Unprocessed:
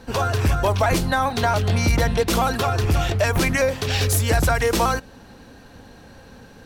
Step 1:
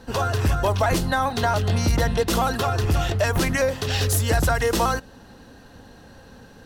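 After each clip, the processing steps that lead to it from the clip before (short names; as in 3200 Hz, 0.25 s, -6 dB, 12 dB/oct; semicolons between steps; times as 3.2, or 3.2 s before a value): notch 2300 Hz, Q 10; gain -1.5 dB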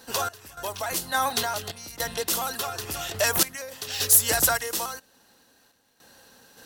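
random-step tremolo, depth 90%; RIAA curve recording; crackle 290/s -54 dBFS; gain -1.5 dB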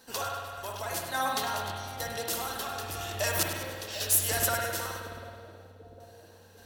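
on a send: split-band echo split 680 Hz, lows 0.75 s, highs 0.1 s, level -11 dB; on the sum: spring tank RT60 2 s, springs 53 ms, chirp 25 ms, DRR 0 dB; gain -7.5 dB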